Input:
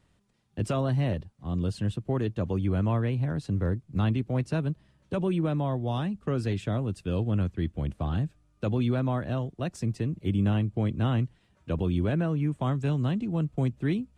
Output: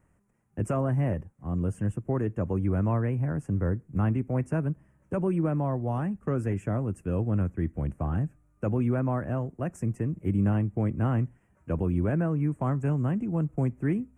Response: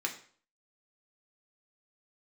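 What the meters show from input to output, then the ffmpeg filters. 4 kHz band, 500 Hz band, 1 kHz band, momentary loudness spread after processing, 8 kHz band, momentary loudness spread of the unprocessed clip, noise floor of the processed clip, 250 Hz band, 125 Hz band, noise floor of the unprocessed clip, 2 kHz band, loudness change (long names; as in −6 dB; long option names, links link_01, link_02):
below −15 dB, +0.5 dB, +0.5 dB, 6 LU, can't be measured, 6 LU, −66 dBFS, +0.5 dB, 0.0 dB, −66 dBFS, −1.5 dB, 0.0 dB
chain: -filter_complex "[0:a]asuperstop=centerf=4000:order=4:qfactor=0.73,asplit=2[link_01][link_02];[1:a]atrim=start_sample=2205,atrim=end_sample=6615[link_03];[link_02][link_03]afir=irnorm=-1:irlink=0,volume=-22.5dB[link_04];[link_01][link_04]amix=inputs=2:normalize=0"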